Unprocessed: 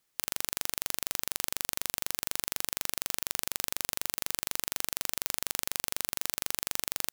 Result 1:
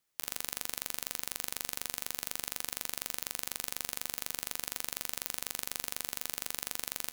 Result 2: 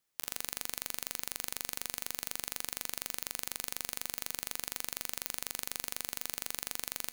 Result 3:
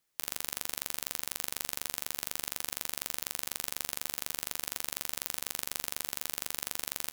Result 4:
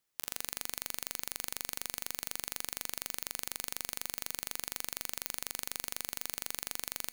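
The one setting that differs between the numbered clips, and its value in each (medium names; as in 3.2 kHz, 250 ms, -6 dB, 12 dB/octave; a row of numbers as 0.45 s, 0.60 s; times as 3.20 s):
feedback comb, decay: 0.38 s, 0.94 s, 0.16 s, 2 s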